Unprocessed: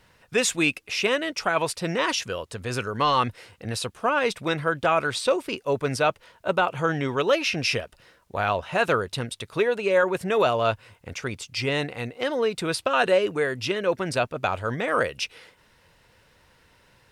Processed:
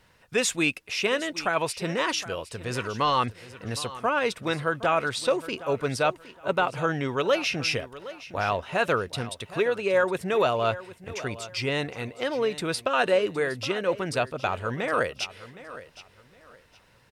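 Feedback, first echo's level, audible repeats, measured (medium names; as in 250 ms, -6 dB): 26%, -16.0 dB, 2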